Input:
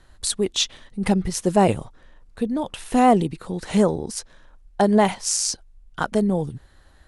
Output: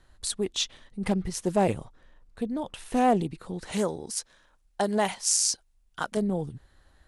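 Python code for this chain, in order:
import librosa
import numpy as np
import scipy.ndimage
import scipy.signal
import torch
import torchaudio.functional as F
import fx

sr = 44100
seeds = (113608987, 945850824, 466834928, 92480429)

y = fx.tilt_eq(x, sr, slope=2.0, at=(3.72, 6.17))
y = fx.doppler_dist(y, sr, depth_ms=0.14)
y = y * librosa.db_to_amplitude(-6.5)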